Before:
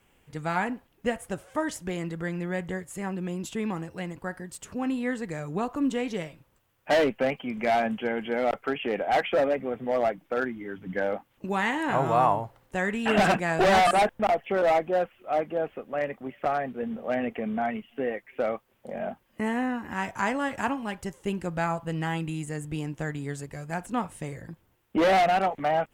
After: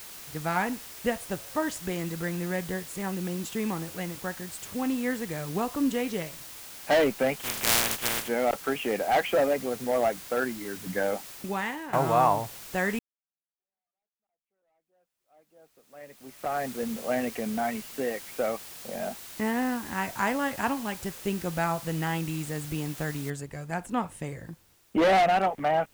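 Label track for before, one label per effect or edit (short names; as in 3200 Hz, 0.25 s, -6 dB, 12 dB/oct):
7.390000	8.270000	spectral contrast lowered exponent 0.15
11.300000	11.930000	fade out, to -14 dB
12.990000	16.650000	fade in exponential
17.200000	19.420000	Chebyshev low-pass 4800 Hz
23.300000	23.300000	noise floor step -44 dB -64 dB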